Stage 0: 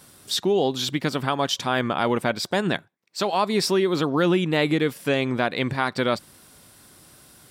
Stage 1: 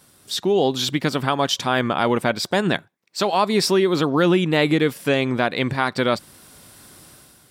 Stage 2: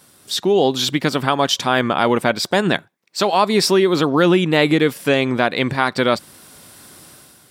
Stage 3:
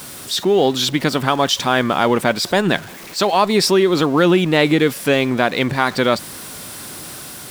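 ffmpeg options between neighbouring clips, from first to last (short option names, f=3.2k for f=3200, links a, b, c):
-af "dynaudnorm=f=100:g=9:m=8.5dB,volume=-3.5dB"
-af "lowshelf=f=73:g=-10,volume=3.5dB"
-af "aeval=exprs='val(0)+0.5*0.0335*sgn(val(0))':c=same"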